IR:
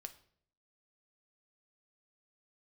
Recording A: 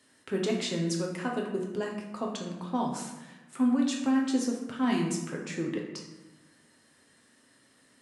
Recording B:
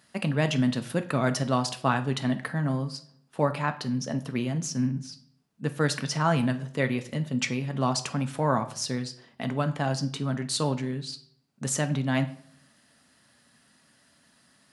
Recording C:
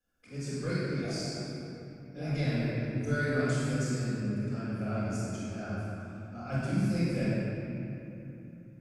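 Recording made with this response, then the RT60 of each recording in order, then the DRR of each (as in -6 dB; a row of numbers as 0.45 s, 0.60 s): B; 1.1 s, 0.60 s, 3.0 s; -1.0 dB, 7.5 dB, -11.5 dB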